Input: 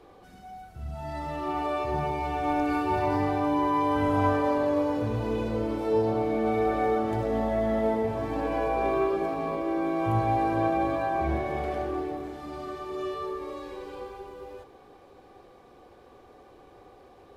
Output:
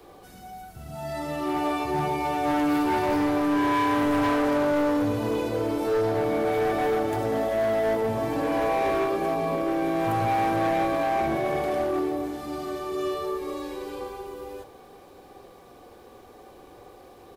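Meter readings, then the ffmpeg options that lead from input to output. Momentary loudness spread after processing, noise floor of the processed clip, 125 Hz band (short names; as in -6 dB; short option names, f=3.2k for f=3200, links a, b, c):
12 LU, -49 dBFS, -2.0 dB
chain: -filter_complex "[0:a]aemphasis=mode=production:type=50kf,acrossover=split=100|1100[a][b][c];[a]acompressor=threshold=-51dB:ratio=6[d];[b]aecho=1:1:48|65:0.562|0.422[e];[d][e][c]amix=inputs=3:normalize=0,asoftclip=type=hard:threshold=-23dB,volume=2.5dB"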